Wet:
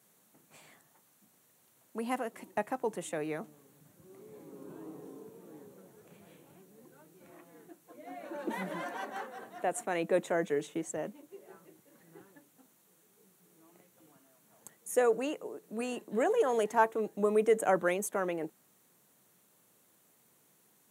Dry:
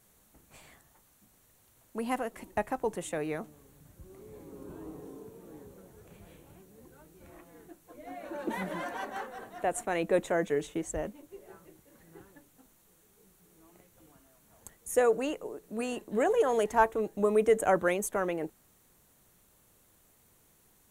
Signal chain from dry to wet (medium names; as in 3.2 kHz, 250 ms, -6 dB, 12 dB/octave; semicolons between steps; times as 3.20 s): high-pass 140 Hz 24 dB/octave; trim -2 dB